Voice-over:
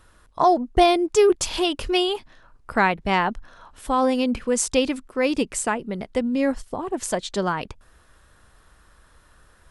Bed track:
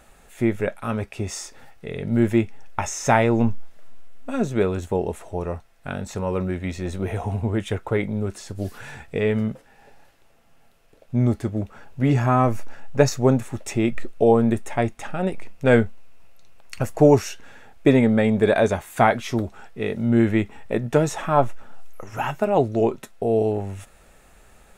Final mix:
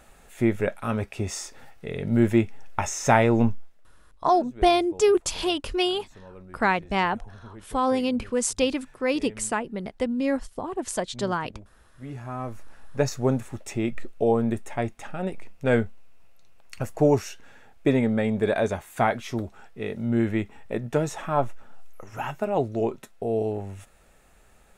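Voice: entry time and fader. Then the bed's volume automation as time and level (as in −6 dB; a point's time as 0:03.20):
3.85 s, −3.0 dB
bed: 0:03.45 −1 dB
0:03.95 −21 dB
0:11.92 −21 dB
0:13.13 −5.5 dB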